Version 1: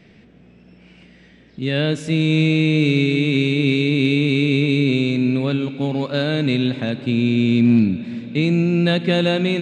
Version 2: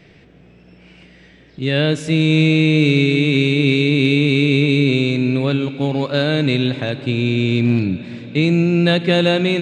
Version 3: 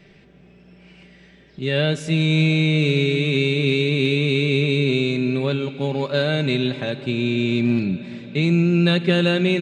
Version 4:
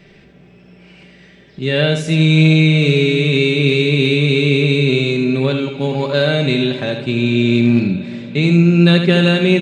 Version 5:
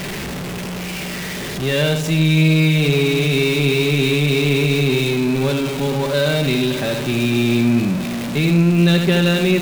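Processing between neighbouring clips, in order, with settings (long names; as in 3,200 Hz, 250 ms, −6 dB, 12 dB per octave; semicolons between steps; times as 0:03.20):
parametric band 220 Hz −14.5 dB 0.22 octaves; level +3.5 dB
comb filter 5.1 ms, depth 47%; level −4 dB
single-tap delay 76 ms −7 dB; level +4.5 dB
converter with a step at zero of −16 dBFS; level −5 dB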